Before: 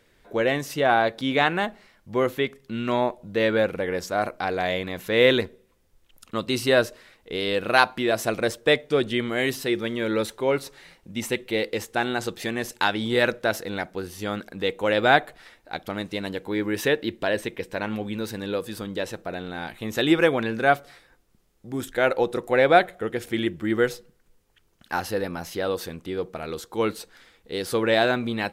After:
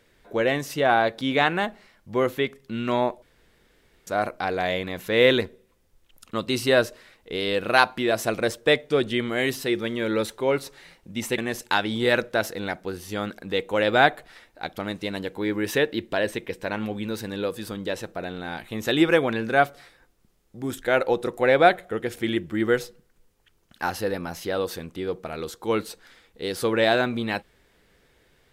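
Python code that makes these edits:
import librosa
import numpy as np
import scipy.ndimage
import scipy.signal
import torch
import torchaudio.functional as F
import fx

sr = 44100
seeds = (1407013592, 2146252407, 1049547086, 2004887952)

y = fx.edit(x, sr, fx.room_tone_fill(start_s=3.22, length_s=0.85),
    fx.cut(start_s=11.38, length_s=1.1), tone=tone)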